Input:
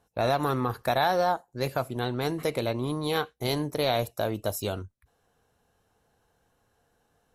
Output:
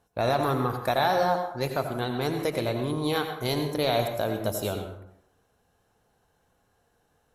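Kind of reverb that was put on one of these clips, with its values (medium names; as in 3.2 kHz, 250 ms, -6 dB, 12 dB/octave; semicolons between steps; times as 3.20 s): plate-style reverb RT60 0.74 s, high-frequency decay 0.6×, pre-delay 75 ms, DRR 5.5 dB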